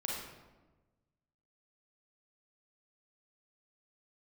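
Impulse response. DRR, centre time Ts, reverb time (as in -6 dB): -3.5 dB, 71 ms, 1.2 s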